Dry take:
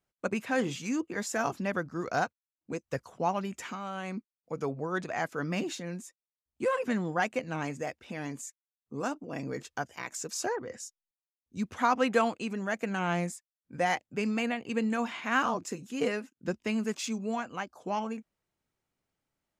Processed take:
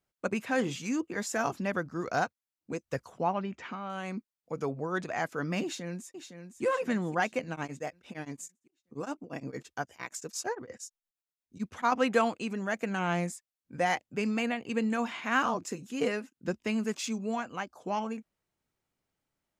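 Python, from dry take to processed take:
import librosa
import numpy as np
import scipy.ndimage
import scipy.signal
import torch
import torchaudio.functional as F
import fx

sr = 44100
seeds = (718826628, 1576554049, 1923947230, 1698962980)

y = fx.gaussian_blur(x, sr, sigma=2.0, at=(3.23, 3.9))
y = fx.echo_throw(y, sr, start_s=5.63, length_s=1.0, ms=510, feedback_pct=50, wet_db=-9.0)
y = fx.tremolo_abs(y, sr, hz=8.7, at=(7.51, 11.92))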